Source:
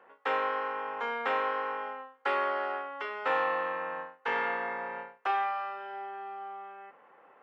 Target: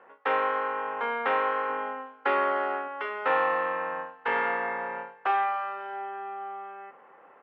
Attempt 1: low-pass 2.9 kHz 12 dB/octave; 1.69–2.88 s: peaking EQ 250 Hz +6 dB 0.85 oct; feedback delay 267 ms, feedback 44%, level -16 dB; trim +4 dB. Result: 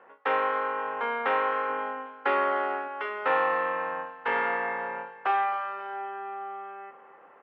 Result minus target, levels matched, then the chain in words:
echo-to-direct +7.5 dB
low-pass 2.9 kHz 12 dB/octave; 1.69–2.88 s: peaking EQ 250 Hz +6 dB 0.85 oct; feedback delay 267 ms, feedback 44%, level -23.5 dB; trim +4 dB

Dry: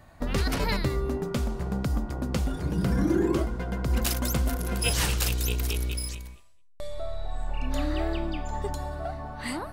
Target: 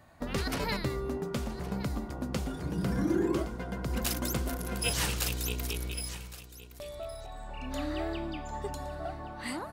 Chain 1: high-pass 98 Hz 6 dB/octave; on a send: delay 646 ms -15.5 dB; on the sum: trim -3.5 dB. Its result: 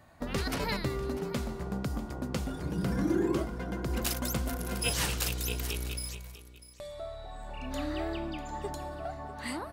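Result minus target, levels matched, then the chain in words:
echo 470 ms early
high-pass 98 Hz 6 dB/octave; on a send: delay 1116 ms -15.5 dB; on the sum: trim -3.5 dB

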